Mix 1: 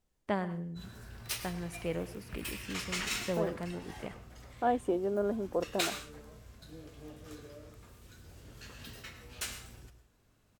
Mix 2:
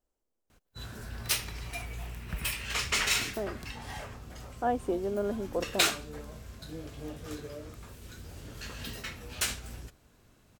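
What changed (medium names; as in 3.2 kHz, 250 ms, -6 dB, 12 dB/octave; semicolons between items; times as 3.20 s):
first voice: muted; background +9.0 dB; reverb: off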